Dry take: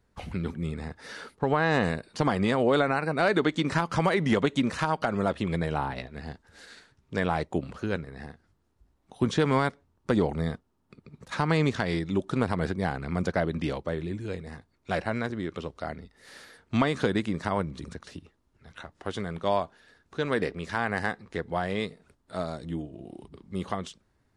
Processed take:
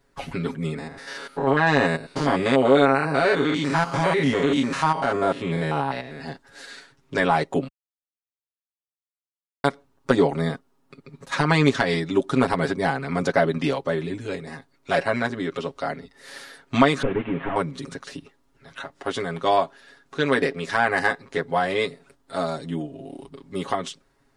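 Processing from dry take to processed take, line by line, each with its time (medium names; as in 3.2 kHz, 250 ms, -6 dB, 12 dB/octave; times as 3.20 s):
0.78–6.20 s: spectrogram pixelated in time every 100 ms
7.68–9.64 s: mute
17.02–17.56 s: one-bit delta coder 16 kbps, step -42 dBFS
whole clip: peaking EQ 89 Hz -11.5 dB 1.6 oct; comb 7.3 ms, depth 91%; trim +5.5 dB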